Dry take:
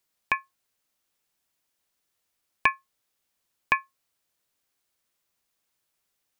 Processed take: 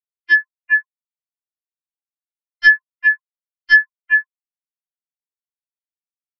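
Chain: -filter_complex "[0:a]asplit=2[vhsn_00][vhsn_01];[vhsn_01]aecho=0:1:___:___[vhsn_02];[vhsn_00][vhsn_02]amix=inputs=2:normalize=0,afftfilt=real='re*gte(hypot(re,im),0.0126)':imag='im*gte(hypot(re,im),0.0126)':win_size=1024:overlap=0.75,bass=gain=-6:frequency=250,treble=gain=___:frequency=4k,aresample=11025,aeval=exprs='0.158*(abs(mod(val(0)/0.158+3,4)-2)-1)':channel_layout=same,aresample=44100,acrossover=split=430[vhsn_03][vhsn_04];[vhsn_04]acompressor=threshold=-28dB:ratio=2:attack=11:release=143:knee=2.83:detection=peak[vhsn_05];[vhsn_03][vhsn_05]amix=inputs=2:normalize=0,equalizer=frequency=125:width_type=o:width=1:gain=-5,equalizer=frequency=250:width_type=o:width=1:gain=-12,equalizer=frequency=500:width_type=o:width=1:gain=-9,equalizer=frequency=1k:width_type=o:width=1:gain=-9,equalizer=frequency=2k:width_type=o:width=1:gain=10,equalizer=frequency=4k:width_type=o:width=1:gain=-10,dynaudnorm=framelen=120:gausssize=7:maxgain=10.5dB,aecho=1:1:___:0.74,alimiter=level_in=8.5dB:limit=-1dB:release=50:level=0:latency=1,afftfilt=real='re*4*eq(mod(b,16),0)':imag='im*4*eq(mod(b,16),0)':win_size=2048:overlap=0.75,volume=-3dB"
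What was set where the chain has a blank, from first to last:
407, 0.316, 15, 3.5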